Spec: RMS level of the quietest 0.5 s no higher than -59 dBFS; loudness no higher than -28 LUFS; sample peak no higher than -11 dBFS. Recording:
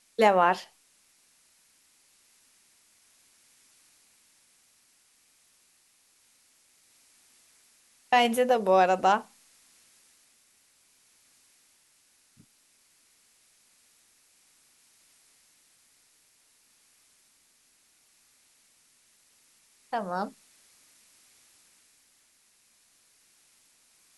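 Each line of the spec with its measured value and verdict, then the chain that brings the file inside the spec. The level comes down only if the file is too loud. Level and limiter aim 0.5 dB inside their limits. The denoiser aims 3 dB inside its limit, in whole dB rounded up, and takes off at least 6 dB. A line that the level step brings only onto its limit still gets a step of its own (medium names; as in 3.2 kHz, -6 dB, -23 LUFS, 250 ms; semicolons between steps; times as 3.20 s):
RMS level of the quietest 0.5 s -65 dBFS: pass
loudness -25.0 LUFS: fail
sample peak -8.0 dBFS: fail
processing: trim -3.5 dB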